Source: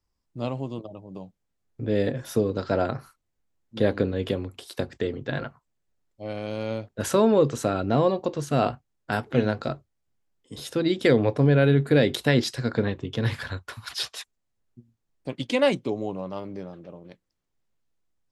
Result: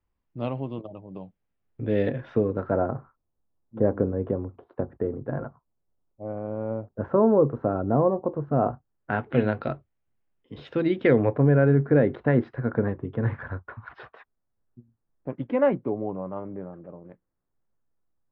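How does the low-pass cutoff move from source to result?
low-pass 24 dB/octave
2.14 s 3 kHz
2.89 s 1.2 kHz
8.67 s 1.2 kHz
9.31 s 2.8 kHz
10.80 s 2.8 kHz
11.65 s 1.6 kHz

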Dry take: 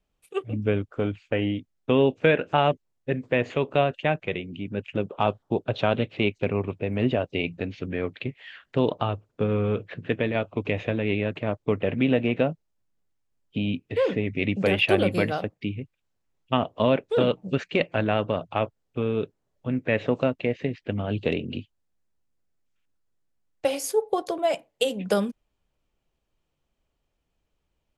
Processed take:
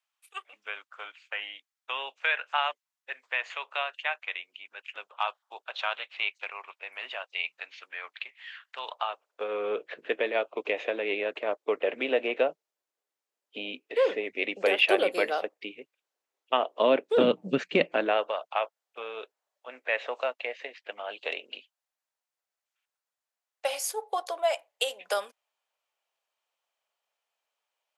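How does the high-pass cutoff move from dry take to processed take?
high-pass 24 dB/octave
8.86 s 950 Hz
9.71 s 410 Hz
16.65 s 410 Hz
17.29 s 190 Hz
17.79 s 190 Hz
18.35 s 640 Hz

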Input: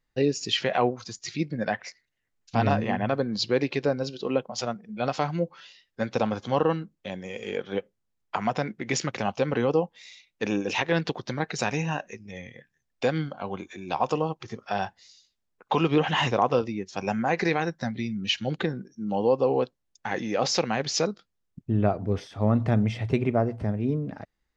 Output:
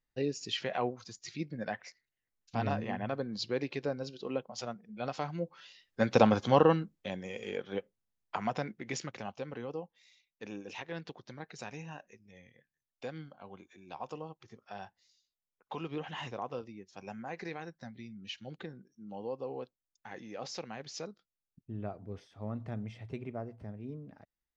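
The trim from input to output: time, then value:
5.37 s -9.5 dB
6.22 s +3 dB
7.62 s -7 dB
8.56 s -7 dB
9.59 s -16.5 dB

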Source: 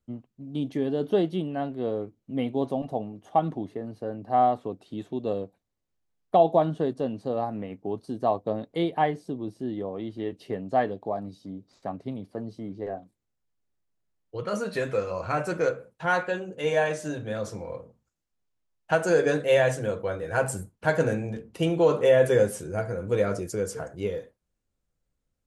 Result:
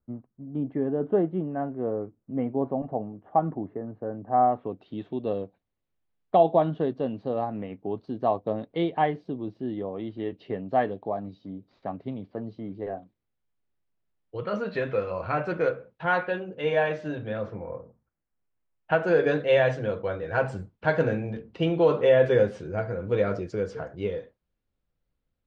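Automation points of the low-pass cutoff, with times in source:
low-pass 24 dB/octave
4.42 s 1.7 kHz
4.82 s 3.7 kHz
17.27 s 3.7 kHz
17.79 s 1.6 kHz
19.38 s 4.2 kHz

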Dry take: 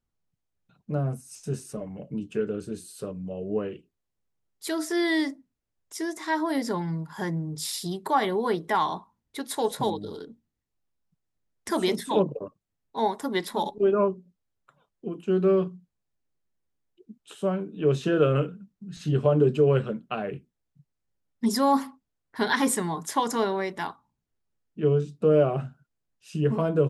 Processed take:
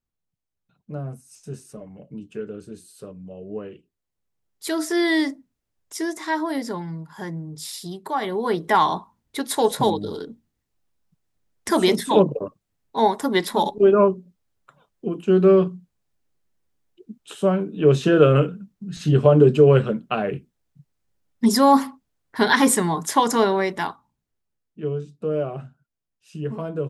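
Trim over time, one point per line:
3.64 s -4 dB
4.76 s +4.5 dB
6.08 s +4.5 dB
6.90 s -2 dB
8.16 s -2 dB
8.75 s +7 dB
23.70 s +7 dB
24.92 s -4.5 dB

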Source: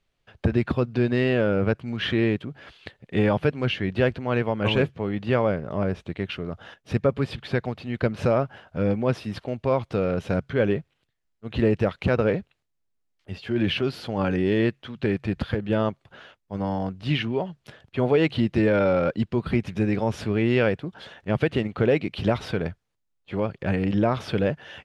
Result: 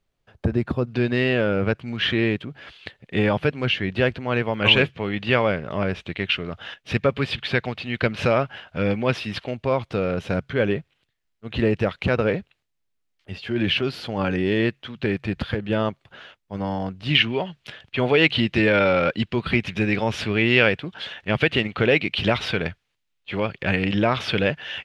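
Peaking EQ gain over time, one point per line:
peaking EQ 2.8 kHz 1.9 oct
-5 dB
from 0.87 s +6 dB
from 4.54 s +12.5 dB
from 9.51 s +5.5 dB
from 17.15 s +13 dB

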